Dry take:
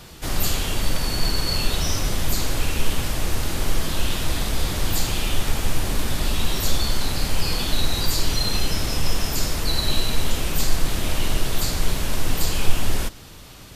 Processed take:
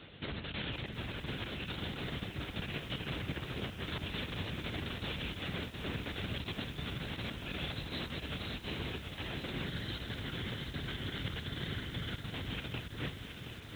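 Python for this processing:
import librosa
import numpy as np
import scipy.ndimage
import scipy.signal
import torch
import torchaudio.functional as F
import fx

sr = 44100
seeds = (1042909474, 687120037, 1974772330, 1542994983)

y = fx.lower_of_two(x, sr, delay_ms=0.59, at=(9.66, 12.21))
y = fx.over_compress(y, sr, threshold_db=-20.0, ratio=-0.5)
y = fx.low_shelf(y, sr, hz=460.0, db=-2.5)
y = fx.tube_stage(y, sr, drive_db=28.0, bias=0.7)
y = fx.peak_eq(y, sr, hz=970.0, db=-9.5, octaves=0.57)
y = fx.comb_fb(y, sr, f0_hz=280.0, decay_s=0.37, harmonics='odd', damping=0.0, mix_pct=70)
y = fx.lpc_vocoder(y, sr, seeds[0], excitation='whisper', order=10)
y = scipy.signal.sosfilt(scipy.signal.butter(2, 73.0, 'highpass', fs=sr, output='sos'), y)
y = fx.echo_crushed(y, sr, ms=722, feedback_pct=80, bits=10, wet_db=-8.5)
y = y * librosa.db_to_amplitude(5.0)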